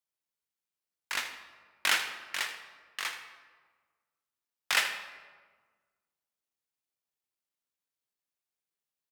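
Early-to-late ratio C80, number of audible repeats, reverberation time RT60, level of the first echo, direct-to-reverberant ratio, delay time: 8.5 dB, 1, 1.5 s, −13.0 dB, 5.5 dB, 80 ms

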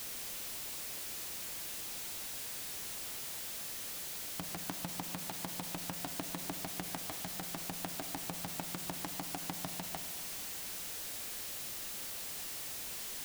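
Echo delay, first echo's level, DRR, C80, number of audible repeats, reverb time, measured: no echo audible, no echo audible, 9.0 dB, 11.5 dB, no echo audible, 2.1 s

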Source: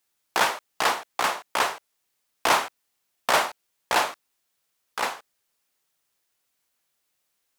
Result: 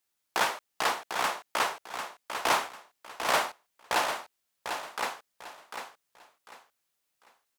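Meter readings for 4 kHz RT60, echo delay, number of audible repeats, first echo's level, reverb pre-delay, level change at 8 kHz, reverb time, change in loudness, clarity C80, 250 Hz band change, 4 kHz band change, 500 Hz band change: no reverb audible, 747 ms, 3, −7.5 dB, no reverb audible, −4.5 dB, no reverb audible, −5.5 dB, no reverb audible, −4.0 dB, −4.0 dB, −4.5 dB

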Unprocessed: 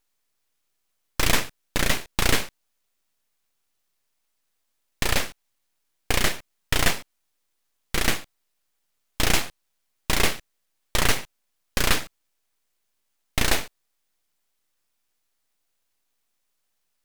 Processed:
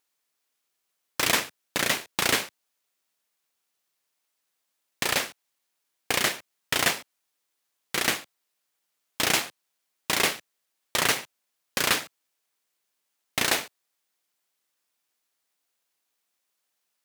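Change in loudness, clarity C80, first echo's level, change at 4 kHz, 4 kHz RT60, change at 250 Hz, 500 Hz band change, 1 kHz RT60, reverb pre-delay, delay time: −0.5 dB, no reverb audible, no echo audible, 0.0 dB, no reverb audible, −4.5 dB, −1.5 dB, no reverb audible, no reverb audible, no echo audible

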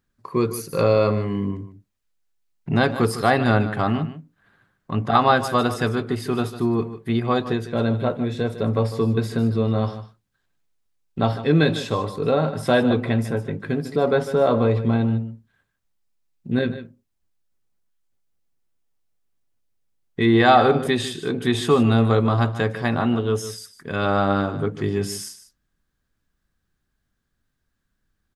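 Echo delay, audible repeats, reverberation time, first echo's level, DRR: 151 ms, 1, no reverb audible, −13.0 dB, no reverb audible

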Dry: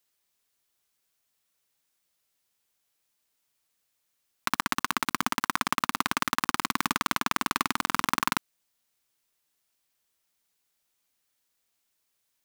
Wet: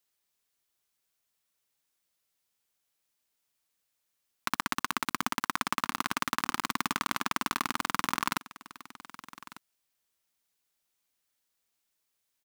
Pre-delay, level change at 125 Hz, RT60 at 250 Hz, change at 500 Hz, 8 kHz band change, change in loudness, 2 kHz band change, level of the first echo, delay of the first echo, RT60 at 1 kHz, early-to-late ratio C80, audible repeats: no reverb audible, −3.5 dB, no reverb audible, −3.5 dB, −3.5 dB, −3.5 dB, −3.5 dB, −17.5 dB, 1,198 ms, no reverb audible, no reverb audible, 1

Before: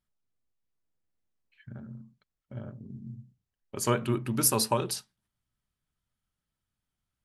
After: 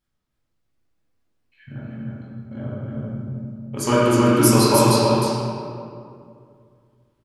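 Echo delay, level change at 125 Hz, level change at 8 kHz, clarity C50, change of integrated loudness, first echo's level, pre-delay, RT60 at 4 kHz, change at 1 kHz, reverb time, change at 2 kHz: 310 ms, +13.0 dB, +6.0 dB, −5.0 dB, +9.5 dB, −3.5 dB, 10 ms, 1.3 s, +13.0 dB, 2.4 s, +12.5 dB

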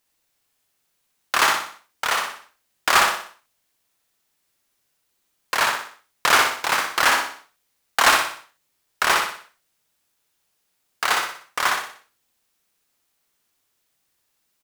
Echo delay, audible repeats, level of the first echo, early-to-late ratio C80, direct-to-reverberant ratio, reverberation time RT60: 61 ms, 5, −3.5 dB, no reverb audible, no reverb audible, no reverb audible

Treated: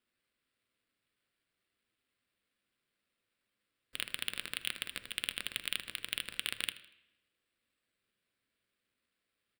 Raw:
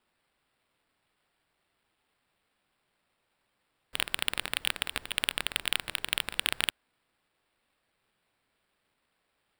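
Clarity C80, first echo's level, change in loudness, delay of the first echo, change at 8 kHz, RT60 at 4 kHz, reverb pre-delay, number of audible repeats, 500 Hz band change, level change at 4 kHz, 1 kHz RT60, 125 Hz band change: 17.0 dB, −18.5 dB, −7.0 dB, 79 ms, −6.5 dB, 0.80 s, 3 ms, 2, −10.5 dB, −6.5 dB, 0.85 s, −9.0 dB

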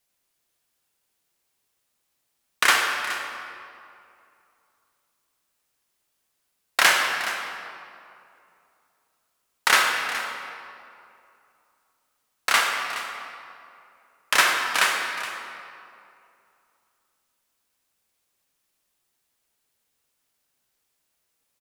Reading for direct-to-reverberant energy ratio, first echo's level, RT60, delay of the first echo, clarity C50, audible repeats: 1.0 dB, −14.0 dB, 2.6 s, 420 ms, 2.0 dB, 1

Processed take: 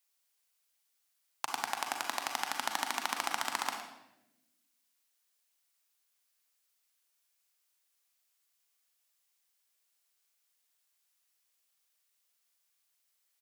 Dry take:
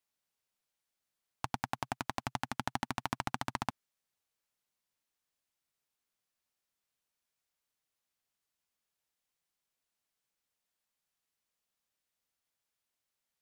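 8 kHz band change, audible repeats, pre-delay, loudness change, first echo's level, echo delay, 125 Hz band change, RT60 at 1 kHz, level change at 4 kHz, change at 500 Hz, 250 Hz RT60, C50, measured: +9.5 dB, 1, 36 ms, +3.5 dB, −13.5 dB, 112 ms, below −20 dB, 0.75 s, +7.5 dB, +0.5 dB, 1.5 s, 4.5 dB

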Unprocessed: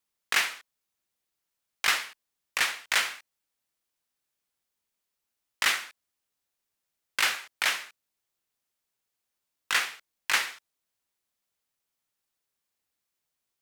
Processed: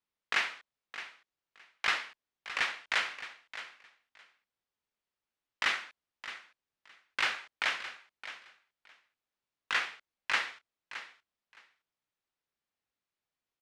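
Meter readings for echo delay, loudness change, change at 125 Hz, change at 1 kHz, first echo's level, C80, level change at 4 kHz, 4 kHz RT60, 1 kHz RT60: 617 ms, −6.5 dB, can't be measured, −3.0 dB, −13.0 dB, no reverb audible, −6.0 dB, no reverb audible, no reverb audible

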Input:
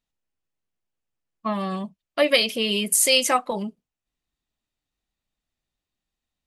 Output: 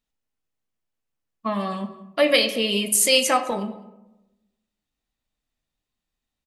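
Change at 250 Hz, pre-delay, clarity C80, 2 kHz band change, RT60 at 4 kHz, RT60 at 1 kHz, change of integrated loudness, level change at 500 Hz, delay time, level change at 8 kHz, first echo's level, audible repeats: +1.0 dB, 3 ms, 13.0 dB, +0.5 dB, 0.55 s, 0.85 s, +0.5 dB, +1.5 dB, 208 ms, 0.0 dB, −22.5 dB, 1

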